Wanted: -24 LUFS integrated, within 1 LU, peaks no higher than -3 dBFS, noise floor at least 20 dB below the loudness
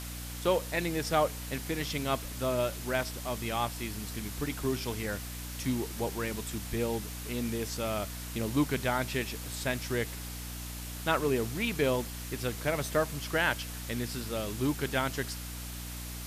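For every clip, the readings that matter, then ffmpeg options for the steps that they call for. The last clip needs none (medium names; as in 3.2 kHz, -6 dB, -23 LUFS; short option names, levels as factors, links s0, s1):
hum 60 Hz; highest harmonic 300 Hz; hum level -39 dBFS; noise floor -40 dBFS; noise floor target -53 dBFS; loudness -32.5 LUFS; peak level -13.0 dBFS; loudness target -24.0 LUFS
-> -af "bandreject=f=60:t=h:w=6,bandreject=f=120:t=h:w=6,bandreject=f=180:t=h:w=6,bandreject=f=240:t=h:w=6,bandreject=f=300:t=h:w=6"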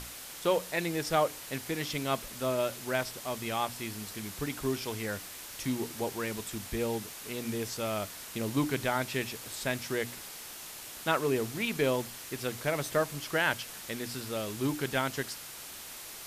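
hum not found; noise floor -45 dBFS; noise floor target -53 dBFS
-> -af "afftdn=nr=8:nf=-45"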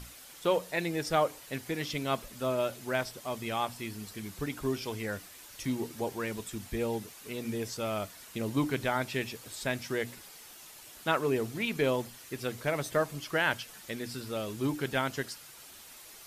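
noise floor -51 dBFS; noise floor target -54 dBFS
-> -af "afftdn=nr=6:nf=-51"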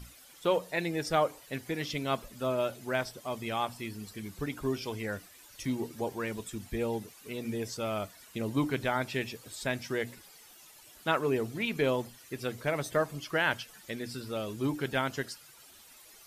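noise floor -55 dBFS; loudness -33.5 LUFS; peak level -13.0 dBFS; loudness target -24.0 LUFS
-> -af "volume=2.99"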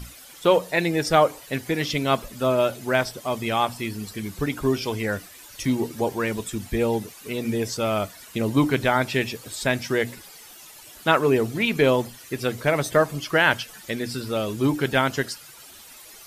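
loudness -24.0 LUFS; peak level -3.5 dBFS; noise floor -46 dBFS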